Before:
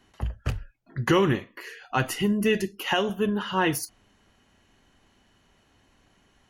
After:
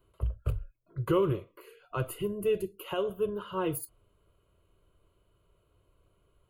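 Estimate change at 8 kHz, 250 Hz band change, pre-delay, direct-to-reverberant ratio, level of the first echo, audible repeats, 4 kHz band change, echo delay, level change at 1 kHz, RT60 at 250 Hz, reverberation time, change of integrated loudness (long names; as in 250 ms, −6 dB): −9.0 dB, −9.0 dB, no reverb audible, no reverb audible, no echo audible, no echo audible, −14.0 dB, no echo audible, −10.0 dB, no reverb audible, no reverb audible, −6.5 dB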